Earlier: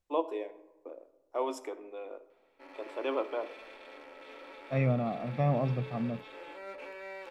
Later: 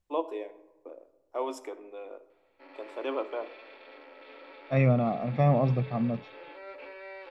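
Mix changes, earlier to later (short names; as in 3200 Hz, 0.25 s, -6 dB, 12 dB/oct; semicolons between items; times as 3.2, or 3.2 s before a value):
second voice +5.0 dB; background: add Chebyshev band-pass 250–4700 Hz, order 4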